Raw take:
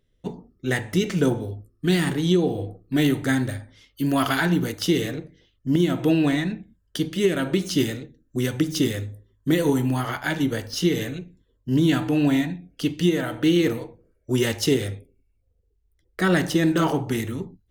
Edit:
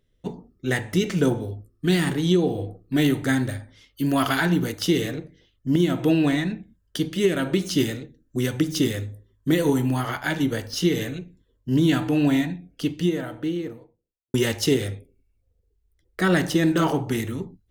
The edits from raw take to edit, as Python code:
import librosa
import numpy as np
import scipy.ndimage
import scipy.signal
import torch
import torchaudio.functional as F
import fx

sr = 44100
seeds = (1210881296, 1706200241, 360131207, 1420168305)

y = fx.studio_fade_out(x, sr, start_s=12.48, length_s=1.86)